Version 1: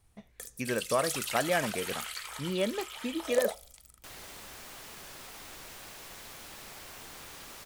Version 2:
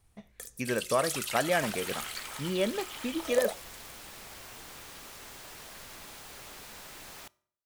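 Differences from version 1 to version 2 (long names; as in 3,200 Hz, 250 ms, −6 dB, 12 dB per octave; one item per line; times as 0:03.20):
speech: send on
second sound: entry −2.45 s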